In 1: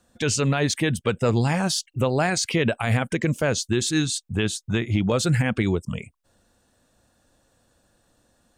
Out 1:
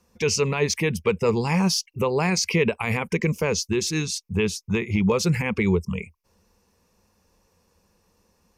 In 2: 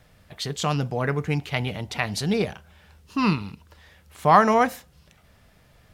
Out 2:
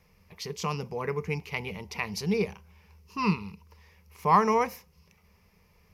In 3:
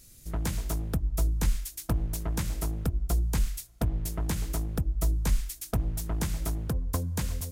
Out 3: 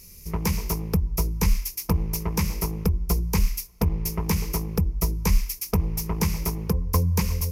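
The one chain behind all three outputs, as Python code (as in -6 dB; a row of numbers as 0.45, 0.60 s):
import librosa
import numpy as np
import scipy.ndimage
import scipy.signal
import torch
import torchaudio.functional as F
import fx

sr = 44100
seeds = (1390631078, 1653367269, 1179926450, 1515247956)

y = fx.ripple_eq(x, sr, per_octave=0.82, db=12)
y = y * 10.0 ** (-9 / 20.0) / np.max(np.abs(y))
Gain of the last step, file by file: -1.5, -8.0, +5.0 dB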